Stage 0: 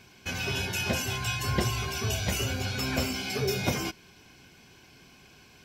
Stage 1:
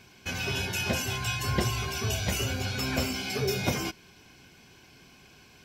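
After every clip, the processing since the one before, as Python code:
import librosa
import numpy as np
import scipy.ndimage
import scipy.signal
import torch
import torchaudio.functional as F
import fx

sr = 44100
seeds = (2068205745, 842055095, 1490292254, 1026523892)

y = x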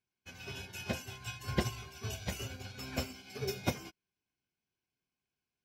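y = fx.upward_expand(x, sr, threshold_db=-46.0, expansion=2.5)
y = F.gain(torch.from_numpy(y), -2.5).numpy()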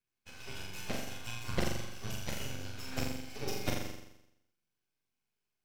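y = np.maximum(x, 0.0)
y = fx.room_flutter(y, sr, wall_m=7.3, rt60_s=0.83)
y = F.gain(torch.from_numpy(y), 1.5).numpy()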